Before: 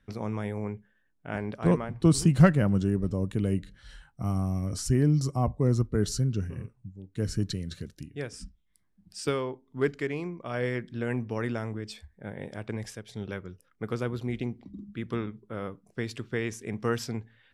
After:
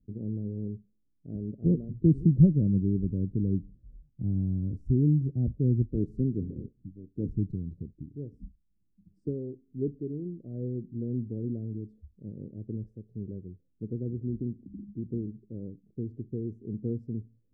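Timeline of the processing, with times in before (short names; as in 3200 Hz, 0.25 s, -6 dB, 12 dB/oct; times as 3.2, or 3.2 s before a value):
5.9–7.28 spectral limiter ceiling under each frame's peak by 16 dB
whole clip: inverse Chebyshev low-pass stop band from 950 Hz, stop band 50 dB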